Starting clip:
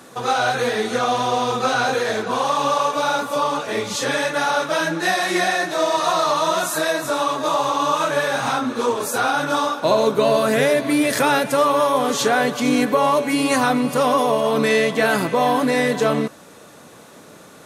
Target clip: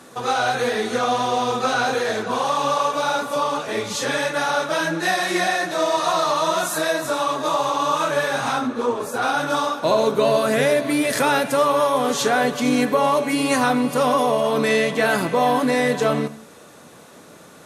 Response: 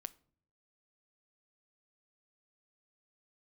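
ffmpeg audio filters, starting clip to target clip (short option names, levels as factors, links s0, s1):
-filter_complex "[0:a]asplit=3[s0][s1][s2];[s0]afade=t=out:st=8.66:d=0.02[s3];[s1]highshelf=f=2400:g=-9,afade=t=in:st=8.66:d=0.02,afade=t=out:st=9.21:d=0.02[s4];[s2]afade=t=in:st=9.21:d=0.02[s5];[s3][s4][s5]amix=inputs=3:normalize=0[s6];[1:a]atrim=start_sample=2205,afade=t=out:st=0.16:d=0.01,atrim=end_sample=7497,asetrate=24696,aresample=44100[s7];[s6][s7]afir=irnorm=-1:irlink=0"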